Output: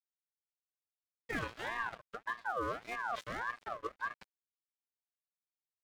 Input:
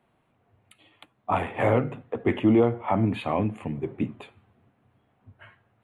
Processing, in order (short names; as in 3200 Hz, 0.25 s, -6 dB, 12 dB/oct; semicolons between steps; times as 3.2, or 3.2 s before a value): chord vocoder bare fifth, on A#3; crossover distortion -42.5 dBFS; reverse; compressor 6:1, threshold -35 dBFS, peak gain reduction 19 dB; reverse; high shelf 2000 Hz +11 dB; ring modulator with a swept carrier 1100 Hz, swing 30%, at 1.7 Hz; gain +1.5 dB